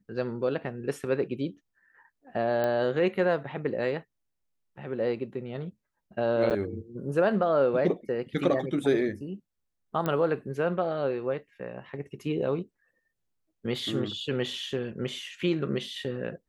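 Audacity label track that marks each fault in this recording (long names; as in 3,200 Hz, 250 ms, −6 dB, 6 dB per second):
2.640000	2.640000	click −17 dBFS
6.500000	6.510000	drop-out 8.5 ms
10.060000	10.060000	click −16 dBFS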